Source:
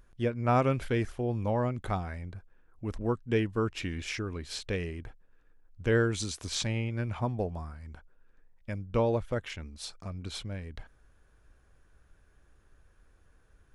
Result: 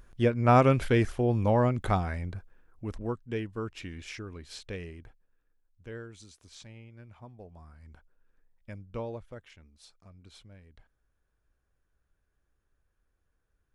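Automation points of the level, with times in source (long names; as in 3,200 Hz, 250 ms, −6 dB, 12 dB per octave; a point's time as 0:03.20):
0:02.31 +5 dB
0:03.34 −6 dB
0:04.91 −6 dB
0:06.05 −17.5 dB
0:07.39 −17.5 dB
0:07.83 −6.5 dB
0:08.70 −6.5 dB
0:09.50 −14.5 dB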